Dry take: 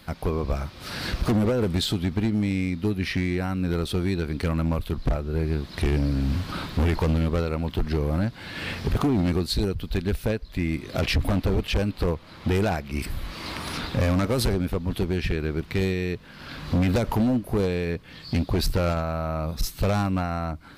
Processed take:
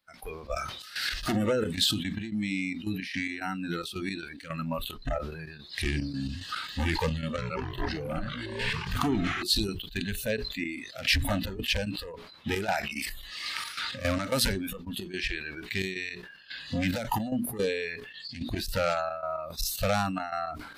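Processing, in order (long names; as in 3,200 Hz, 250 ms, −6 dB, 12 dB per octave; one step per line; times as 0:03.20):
mains-hum notches 60/120/180/240/300/360/420 Hz
noise reduction from a noise print of the clip's start 18 dB
low-shelf EQ 370 Hz −10.5 dB
gate pattern ".xxx.x.x" 110 BPM −12 dB
0:07.20–0:09.43: delay with pitch and tempo change per echo 182 ms, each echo −5 semitones, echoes 3
level that may fall only so fast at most 55 dB per second
level +2.5 dB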